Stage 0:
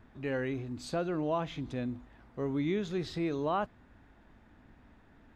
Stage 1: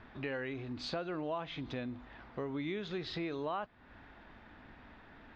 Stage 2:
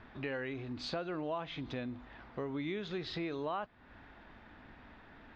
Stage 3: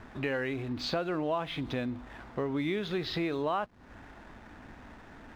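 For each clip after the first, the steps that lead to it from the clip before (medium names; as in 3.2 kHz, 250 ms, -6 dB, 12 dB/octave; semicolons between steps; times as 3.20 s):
low-pass 4.6 kHz 24 dB/octave; bass shelf 480 Hz -9.5 dB; compression 3:1, threshold -48 dBFS, peak gain reduction 14 dB; trim +9.5 dB
no audible change
hysteresis with a dead band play -59 dBFS; trim +6.5 dB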